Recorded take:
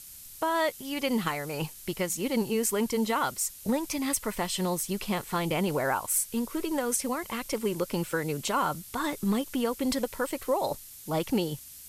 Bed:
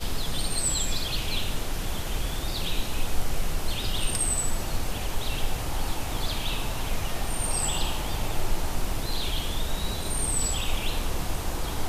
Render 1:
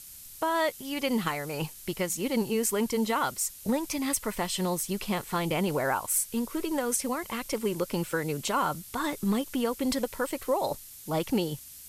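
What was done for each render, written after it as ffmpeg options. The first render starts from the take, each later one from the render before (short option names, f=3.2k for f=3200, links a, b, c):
-af anull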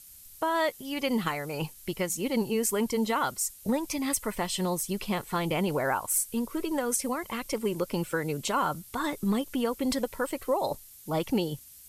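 -af "afftdn=nr=6:nf=-47"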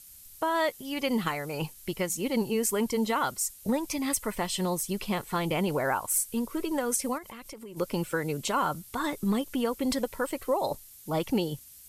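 -filter_complex "[0:a]asplit=3[a][b][c];[a]afade=t=out:st=7.17:d=0.02[d];[b]acompressor=threshold=-40dB:ratio=8:attack=3.2:release=140:knee=1:detection=peak,afade=t=in:st=7.17:d=0.02,afade=t=out:st=7.76:d=0.02[e];[c]afade=t=in:st=7.76:d=0.02[f];[d][e][f]amix=inputs=3:normalize=0"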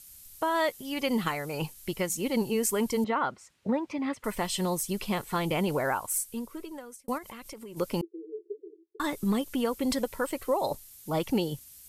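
-filter_complex "[0:a]asettb=1/sr,asplit=3[a][b][c];[a]atrim=end=3.044[d];[b]atrim=start=3.04:end=4.24,asetpts=PTS-STARTPTS,afade=t=in:d=0.004:c=qsin,afade=t=out:st=1.196:d=0.004:c=qsin,highpass=130,lowpass=2.2k[e];[c]atrim=start=4.236[f];[d][e]acrossfade=d=0.004:c1=hsin:c2=qsin[g];[g][f]acrossfade=d=0.004:c1=qsin:c2=hsin,asettb=1/sr,asplit=3[h][i][j];[h]atrim=end=8.014[k];[i]atrim=start=8.01:end=9,asetpts=PTS-STARTPTS,afade=t=in:d=0.004:c=qsin,afade=t=out:st=0.986:d=0.004:c=qsin,asuperpass=centerf=380:order=12:qfactor=3.4[l];[j]atrim=start=8.996[m];[k][l]acrossfade=d=0.004:c1=hsin:c2=qsin[n];[n][m]acrossfade=d=0.004:c1=qsin:c2=hsin,asplit=2[o][p];[o]atrim=end=7.08,asetpts=PTS-STARTPTS,afade=t=out:st=5.78:d=1.3[q];[p]atrim=start=7.08,asetpts=PTS-STARTPTS,afade=t=in:d=0.004:c=hsin[r];[q][r]concat=n=2:v=0:a=1"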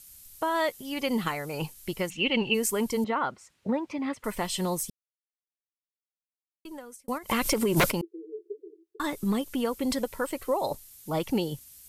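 -filter_complex "[0:a]asplit=3[a][b][c];[a]afade=t=out:st=2.09:d=0.02[d];[b]lowpass=f=2.8k:t=q:w=9.7,afade=t=in:st=2.09:d=0.02,afade=t=out:st=2.53:d=0.02[e];[c]afade=t=in:st=2.53:d=0.02[f];[d][e][f]amix=inputs=3:normalize=0,asplit=3[g][h][i];[g]afade=t=out:st=7.29:d=0.02[j];[h]aeval=exprs='0.15*sin(PI/2*5.62*val(0)/0.15)':c=same,afade=t=in:st=7.29:d=0.02,afade=t=out:st=7.9:d=0.02[k];[i]afade=t=in:st=7.9:d=0.02[l];[j][k][l]amix=inputs=3:normalize=0,asplit=3[m][n][o];[m]atrim=end=4.9,asetpts=PTS-STARTPTS,afade=t=out:st=4.896:d=0.004:c=hsin[p];[n]atrim=start=4.9:end=6.65,asetpts=PTS-STARTPTS,volume=0[q];[o]atrim=start=6.65,asetpts=PTS-STARTPTS,afade=t=in:d=0.004:c=hsin[r];[p][q][r]concat=n=3:v=0:a=1"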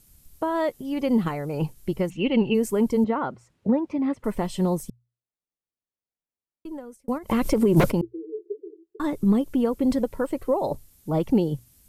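-af "tiltshelf=f=970:g=8.5,bandreject=f=60:t=h:w=6,bandreject=f=120:t=h:w=6"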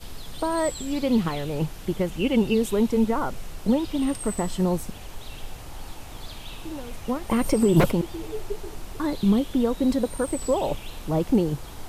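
-filter_complex "[1:a]volume=-9.5dB[a];[0:a][a]amix=inputs=2:normalize=0"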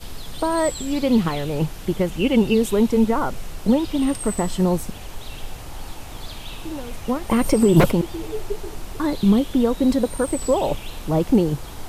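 -af "volume=4dB"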